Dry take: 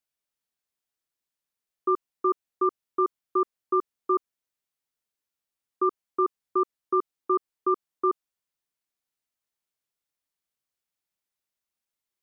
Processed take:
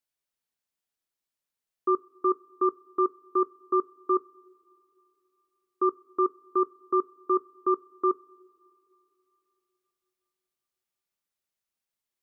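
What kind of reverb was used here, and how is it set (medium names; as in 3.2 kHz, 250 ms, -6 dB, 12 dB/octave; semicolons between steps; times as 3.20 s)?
two-slope reverb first 0.26 s, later 3.3 s, from -21 dB, DRR 15.5 dB; trim -1 dB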